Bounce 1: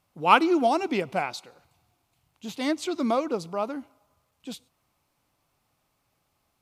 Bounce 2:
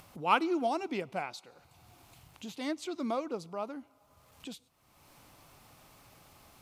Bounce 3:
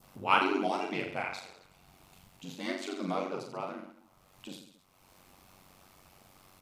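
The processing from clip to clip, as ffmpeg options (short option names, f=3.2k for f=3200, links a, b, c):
-af "acompressor=mode=upward:threshold=-30dB:ratio=2.5,volume=-8.5dB"
-af "aecho=1:1:40|86|138.9|199.7|269.7:0.631|0.398|0.251|0.158|0.1,aeval=exprs='val(0)*sin(2*PI*47*n/s)':c=same,adynamicequalizer=threshold=0.00316:dfrequency=2200:dqfactor=0.99:tfrequency=2200:tqfactor=0.99:attack=5:release=100:ratio=0.375:range=3.5:mode=boostabove:tftype=bell"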